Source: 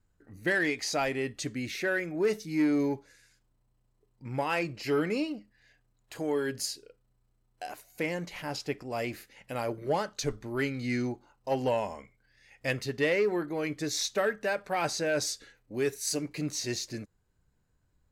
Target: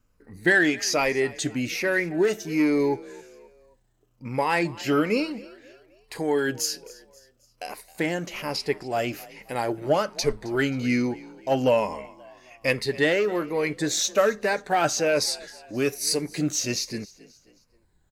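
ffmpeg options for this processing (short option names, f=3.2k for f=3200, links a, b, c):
-filter_complex "[0:a]afftfilt=real='re*pow(10,8/40*sin(2*PI*(0.89*log(max(b,1)*sr/1024/100)/log(2)-(-1.2)*(pts-256)/sr)))':imag='im*pow(10,8/40*sin(2*PI*(0.89*log(max(b,1)*sr/1024/100)/log(2)-(-1.2)*(pts-256)/sr)))':win_size=1024:overlap=0.75,equalizer=f=81:t=o:w=1.4:g=-5,asplit=2[a][b];[b]asplit=3[c][d][e];[c]adelay=266,afreqshift=40,volume=-21dB[f];[d]adelay=532,afreqshift=80,volume=-27.9dB[g];[e]adelay=798,afreqshift=120,volume=-34.9dB[h];[f][g][h]amix=inputs=3:normalize=0[i];[a][i]amix=inputs=2:normalize=0,volume=6dB"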